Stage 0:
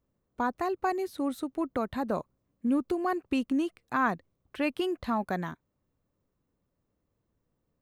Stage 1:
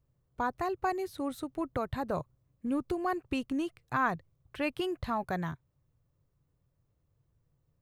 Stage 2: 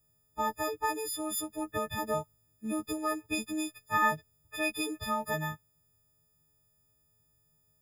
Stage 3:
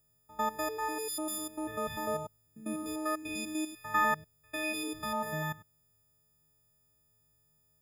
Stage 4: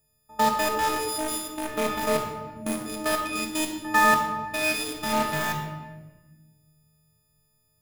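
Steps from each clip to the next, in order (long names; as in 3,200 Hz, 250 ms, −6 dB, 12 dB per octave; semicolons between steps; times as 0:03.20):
low shelf with overshoot 170 Hz +6.5 dB, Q 3; level −1.5 dB
every partial snapped to a pitch grid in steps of 6 semitones; high-shelf EQ 6,200 Hz +6 dB; level −2 dB
spectrum averaged block by block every 100 ms
in parallel at −3 dB: bit reduction 5 bits; on the sum: rectangular room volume 850 cubic metres, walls mixed, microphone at 1.6 metres; level +2.5 dB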